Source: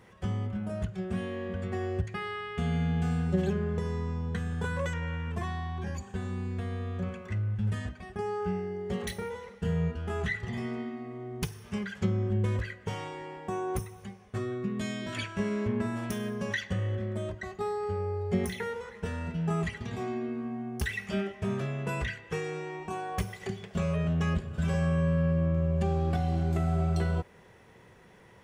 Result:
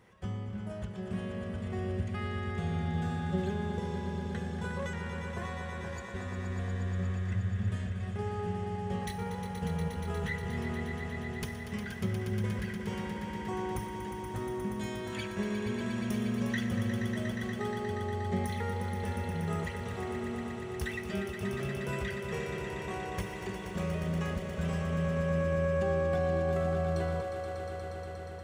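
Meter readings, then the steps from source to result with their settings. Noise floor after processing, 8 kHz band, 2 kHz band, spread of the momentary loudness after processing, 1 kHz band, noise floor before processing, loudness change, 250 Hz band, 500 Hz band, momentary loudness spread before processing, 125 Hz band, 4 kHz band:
−40 dBFS, −1.5 dB, −1.0 dB, 8 LU, −0.5 dB, −55 dBFS, −2.5 dB, −2.0 dB, −0.5 dB, 9 LU, −3.5 dB, −1.5 dB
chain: echo that builds up and dies away 119 ms, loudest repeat 5, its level −8.5 dB
level −5 dB

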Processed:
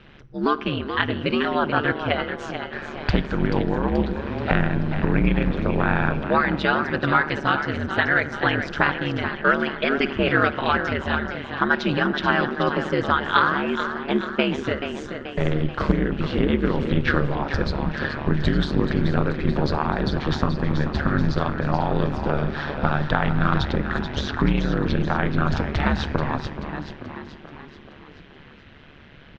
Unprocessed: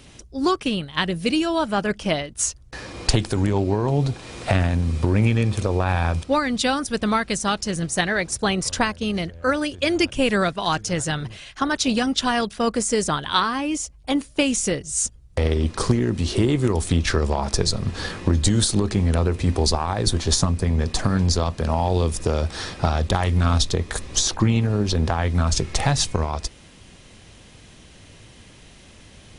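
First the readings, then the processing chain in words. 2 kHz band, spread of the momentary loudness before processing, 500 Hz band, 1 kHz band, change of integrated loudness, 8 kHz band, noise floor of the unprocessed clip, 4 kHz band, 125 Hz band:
+5.0 dB, 5 LU, −0.5 dB, +2.0 dB, −1.0 dB, below −25 dB, −48 dBFS, −5.5 dB, −3.0 dB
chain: low-pass filter 3,400 Hz 24 dB per octave
parametric band 1,500 Hz +9 dB 0.55 octaves
on a send: echo with shifted repeats 432 ms, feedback 54%, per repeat +47 Hz, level −9 dB
on the sum: feedback delay network reverb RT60 2 s, low-frequency decay 1.55×, high-frequency decay 0.4×, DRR 14.5 dB
floating-point word with a short mantissa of 8 bits
ring modulation 72 Hz
level +1 dB

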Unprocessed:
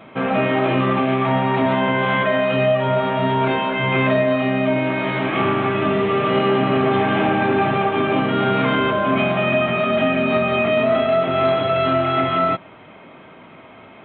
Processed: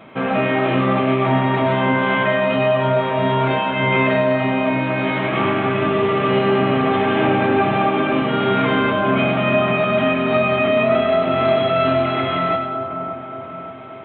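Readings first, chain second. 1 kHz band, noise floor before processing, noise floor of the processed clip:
+0.5 dB, −43 dBFS, −32 dBFS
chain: echo with a time of its own for lows and highs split 1,400 Hz, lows 575 ms, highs 100 ms, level −7.5 dB

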